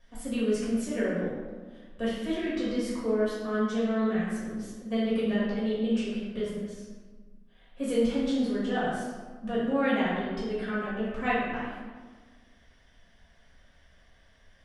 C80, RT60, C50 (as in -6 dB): 1.5 dB, 1.5 s, -1.0 dB